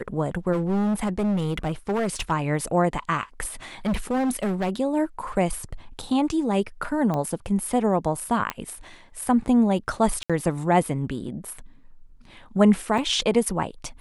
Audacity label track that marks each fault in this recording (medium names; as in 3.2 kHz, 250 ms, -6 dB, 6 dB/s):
0.520000	2.320000	clipped -20.5 dBFS
3.850000	4.700000	clipped -20.5 dBFS
7.140000	7.140000	pop -16 dBFS
8.500000	8.500000	pop -12 dBFS
10.230000	10.300000	dropout 66 ms
12.980000	12.980000	dropout 3 ms